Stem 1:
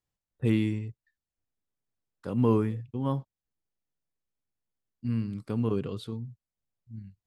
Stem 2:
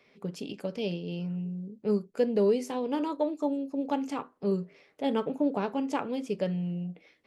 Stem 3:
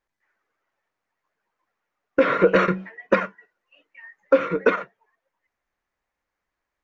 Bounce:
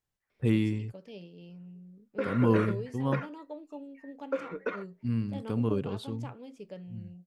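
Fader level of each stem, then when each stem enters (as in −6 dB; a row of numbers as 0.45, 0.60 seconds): −0.5, −14.0, −15.0 decibels; 0.00, 0.30, 0.00 seconds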